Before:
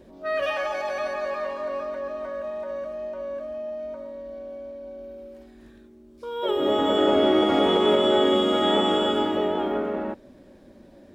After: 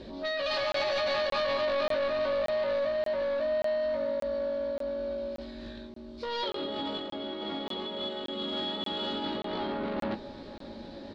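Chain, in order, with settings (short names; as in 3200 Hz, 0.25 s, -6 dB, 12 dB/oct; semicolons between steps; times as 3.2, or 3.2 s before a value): dynamic EQ 190 Hz, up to +6 dB, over -43 dBFS, Q 2.1; negative-ratio compressor -30 dBFS, ratio -1; soft clip -29 dBFS, distortion -10 dB; synth low-pass 4200 Hz, resonance Q 4.9; doubler 18 ms -7 dB; on a send: narrowing echo 0.54 s, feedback 67%, band-pass 860 Hz, level -17 dB; on the sum: crackling interface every 0.58 s, samples 1024, zero, from 0.72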